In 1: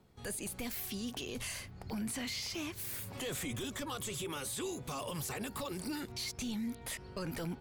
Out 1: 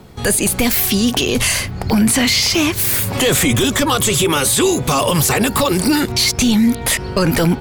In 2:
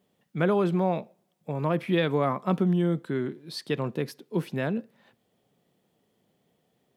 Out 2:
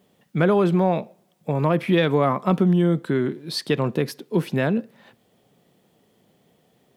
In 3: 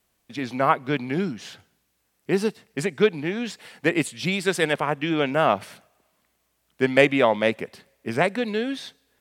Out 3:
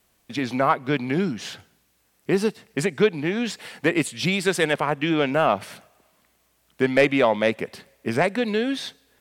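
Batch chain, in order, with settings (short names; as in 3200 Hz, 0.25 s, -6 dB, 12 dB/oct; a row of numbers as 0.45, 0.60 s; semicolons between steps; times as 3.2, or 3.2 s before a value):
in parallel at +1 dB: compressor, threshold -29 dBFS; on the sum: soft clip -4.5 dBFS; normalise peaks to -6 dBFS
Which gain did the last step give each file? +18.0, +2.5, -1.0 dB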